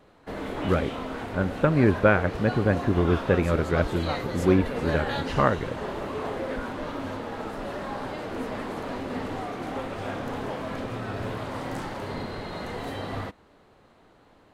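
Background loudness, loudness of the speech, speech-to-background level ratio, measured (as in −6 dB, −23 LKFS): −33.0 LKFS, −25.0 LKFS, 8.0 dB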